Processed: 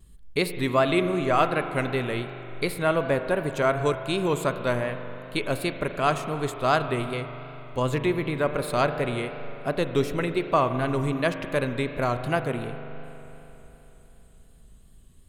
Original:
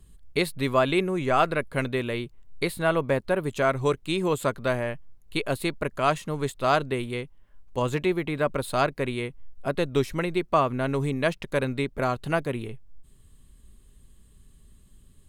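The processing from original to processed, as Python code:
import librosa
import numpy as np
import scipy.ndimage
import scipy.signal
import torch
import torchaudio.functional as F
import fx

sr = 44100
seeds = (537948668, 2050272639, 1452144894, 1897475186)

y = fx.rev_spring(x, sr, rt60_s=3.5, pass_ms=(40,), chirp_ms=70, drr_db=8.0)
y = fx.vibrato(y, sr, rate_hz=2.7, depth_cents=48.0)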